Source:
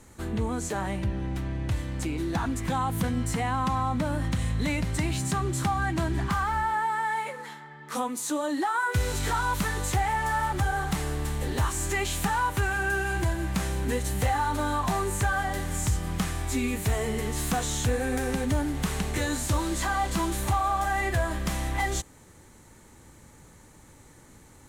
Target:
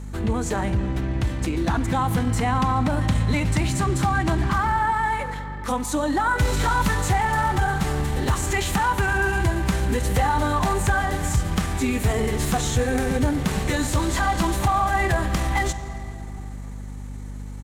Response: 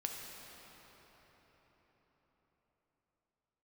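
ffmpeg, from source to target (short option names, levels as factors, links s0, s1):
-filter_complex "[0:a]asplit=2[s0][s1];[1:a]atrim=start_sample=2205,lowpass=7800[s2];[s1][s2]afir=irnorm=-1:irlink=0,volume=0.501[s3];[s0][s3]amix=inputs=2:normalize=0,atempo=1.4,aeval=exprs='val(0)+0.0178*(sin(2*PI*50*n/s)+sin(2*PI*2*50*n/s)/2+sin(2*PI*3*50*n/s)/3+sin(2*PI*4*50*n/s)/4+sin(2*PI*5*50*n/s)/5)':c=same,volume=1.33"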